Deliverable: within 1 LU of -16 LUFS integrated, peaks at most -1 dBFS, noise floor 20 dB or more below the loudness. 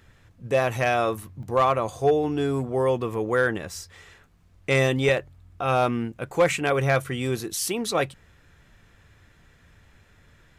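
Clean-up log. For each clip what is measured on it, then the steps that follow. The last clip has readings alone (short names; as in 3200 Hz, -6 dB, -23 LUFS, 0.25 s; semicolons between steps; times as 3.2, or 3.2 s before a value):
dropouts 2; longest dropout 1.3 ms; loudness -24.5 LUFS; peak -12.0 dBFS; loudness target -16.0 LUFS
-> interpolate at 1.43/5.09, 1.3 ms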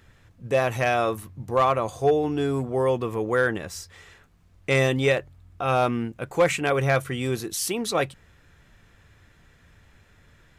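dropouts 0; loudness -24.5 LUFS; peak -12.0 dBFS; loudness target -16.0 LUFS
-> gain +8.5 dB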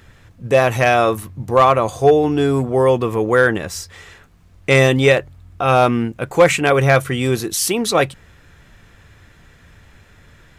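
loudness -16.0 LUFS; peak -3.5 dBFS; noise floor -49 dBFS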